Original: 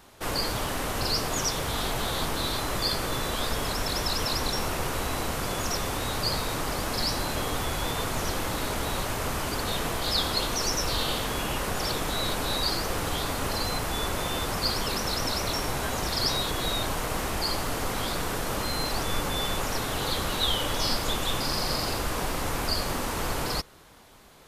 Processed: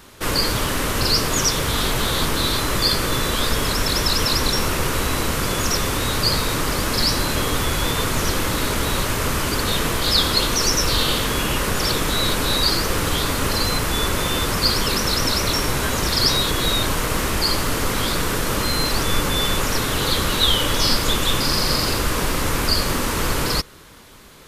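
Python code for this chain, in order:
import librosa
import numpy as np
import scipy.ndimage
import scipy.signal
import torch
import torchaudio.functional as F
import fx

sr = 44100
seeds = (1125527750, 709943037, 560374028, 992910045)

y = fx.peak_eq(x, sr, hz=740.0, db=-8.0, octaves=0.59)
y = y * librosa.db_to_amplitude(9.0)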